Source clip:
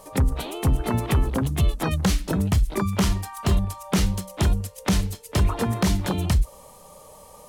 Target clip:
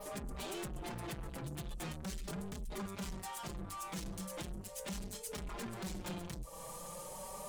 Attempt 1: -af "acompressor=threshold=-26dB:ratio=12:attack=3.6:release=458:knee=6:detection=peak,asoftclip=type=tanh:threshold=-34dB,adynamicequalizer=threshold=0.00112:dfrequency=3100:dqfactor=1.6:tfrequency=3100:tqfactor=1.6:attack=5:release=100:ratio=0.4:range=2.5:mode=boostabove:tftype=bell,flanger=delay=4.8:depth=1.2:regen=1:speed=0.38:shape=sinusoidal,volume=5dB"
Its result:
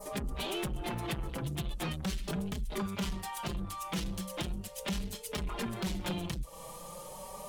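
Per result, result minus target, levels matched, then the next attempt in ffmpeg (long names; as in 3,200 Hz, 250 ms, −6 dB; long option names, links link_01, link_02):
8,000 Hz band −4.5 dB; soft clipping: distortion −5 dB
-af "acompressor=threshold=-26dB:ratio=12:attack=3.6:release=458:knee=6:detection=peak,asoftclip=type=tanh:threshold=-34dB,adynamicequalizer=threshold=0.00112:dfrequency=7700:dqfactor=1.6:tfrequency=7700:tqfactor=1.6:attack=5:release=100:ratio=0.4:range=2.5:mode=boostabove:tftype=bell,flanger=delay=4.8:depth=1.2:regen=1:speed=0.38:shape=sinusoidal,volume=5dB"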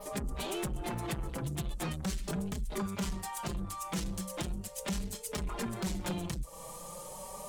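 soft clipping: distortion −5 dB
-af "acompressor=threshold=-26dB:ratio=12:attack=3.6:release=458:knee=6:detection=peak,asoftclip=type=tanh:threshold=-43dB,adynamicequalizer=threshold=0.00112:dfrequency=7700:dqfactor=1.6:tfrequency=7700:tqfactor=1.6:attack=5:release=100:ratio=0.4:range=2.5:mode=boostabove:tftype=bell,flanger=delay=4.8:depth=1.2:regen=1:speed=0.38:shape=sinusoidal,volume=5dB"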